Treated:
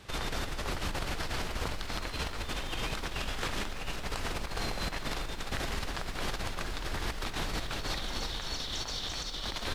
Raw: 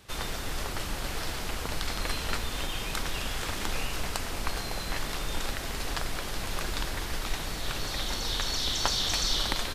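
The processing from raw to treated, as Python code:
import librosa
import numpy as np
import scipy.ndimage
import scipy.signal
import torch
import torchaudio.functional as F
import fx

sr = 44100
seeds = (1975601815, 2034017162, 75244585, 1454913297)

y = fx.high_shelf(x, sr, hz=8300.0, db=-11.5)
y = fx.over_compress(y, sr, threshold_db=-35.0, ratio=-1.0)
y = fx.echo_crushed(y, sr, ms=356, feedback_pct=80, bits=9, wet_db=-14)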